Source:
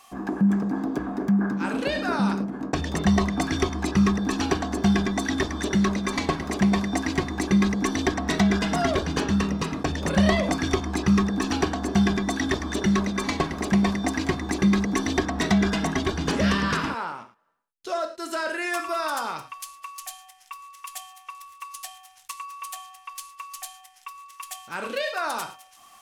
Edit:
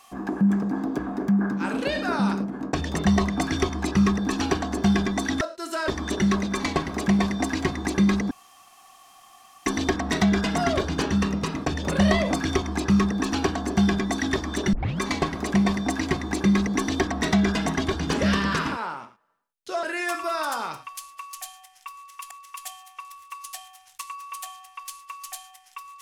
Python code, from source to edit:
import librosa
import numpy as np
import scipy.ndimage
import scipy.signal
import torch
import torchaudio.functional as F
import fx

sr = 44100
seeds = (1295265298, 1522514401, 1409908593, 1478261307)

y = fx.edit(x, sr, fx.insert_room_tone(at_s=7.84, length_s=1.35),
    fx.tape_start(start_s=12.91, length_s=0.27),
    fx.move(start_s=18.01, length_s=0.47, to_s=5.41),
    fx.repeat(start_s=20.61, length_s=0.35, count=2), tone=tone)